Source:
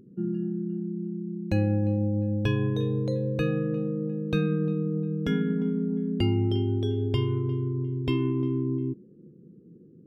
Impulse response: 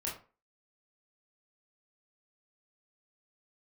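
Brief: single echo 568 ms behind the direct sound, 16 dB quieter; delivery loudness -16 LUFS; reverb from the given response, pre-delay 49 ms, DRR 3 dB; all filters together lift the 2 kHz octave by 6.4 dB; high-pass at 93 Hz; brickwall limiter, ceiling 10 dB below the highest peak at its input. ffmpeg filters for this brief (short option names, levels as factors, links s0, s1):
-filter_complex "[0:a]highpass=93,equalizer=f=2000:t=o:g=8.5,alimiter=limit=0.075:level=0:latency=1,aecho=1:1:568:0.158,asplit=2[s0][s1];[1:a]atrim=start_sample=2205,adelay=49[s2];[s1][s2]afir=irnorm=-1:irlink=0,volume=0.562[s3];[s0][s3]amix=inputs=2:normalize=0,volume=5.01"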